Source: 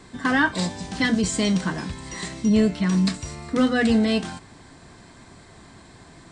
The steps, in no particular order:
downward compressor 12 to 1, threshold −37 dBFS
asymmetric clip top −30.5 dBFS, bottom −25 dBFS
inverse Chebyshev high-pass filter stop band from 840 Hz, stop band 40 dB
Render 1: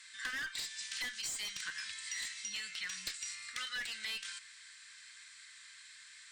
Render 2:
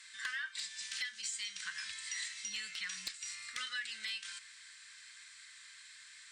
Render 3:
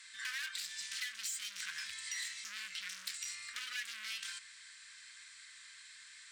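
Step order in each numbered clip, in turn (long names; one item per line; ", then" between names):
inverse Chebyshev high-pass filter, then asymmetric clip, then downward compressor
inverse Chebyshev high-pass filter, then downward compressor, then asymmetric clip
asymmetric clip, then inverse Chebyshev high-pass filter, then downward compressor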